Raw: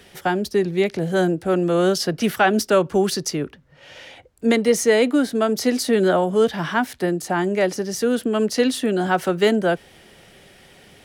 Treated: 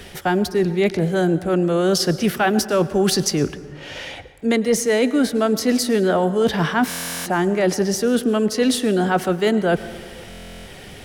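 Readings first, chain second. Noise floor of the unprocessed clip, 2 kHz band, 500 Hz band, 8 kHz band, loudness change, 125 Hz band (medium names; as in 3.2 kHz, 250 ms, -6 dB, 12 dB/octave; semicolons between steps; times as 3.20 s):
-50 dBFS, 0.0 dB, 0.0 dB, +3.0 dB, +1.0 dB, +3.5 dB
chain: bass shelf 78 Hz +11 dB; reverse; compression, threshold -24 dBFS, peak gain reduction 12.5 dB; reverse; plate-style reverb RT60 1.7 s, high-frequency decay 0.45×, pre-delay 90 ms, DRR 14.5 dB; buffer glitch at 6.89/10.29 s, samples 1024, times 15; trim +8.5 dB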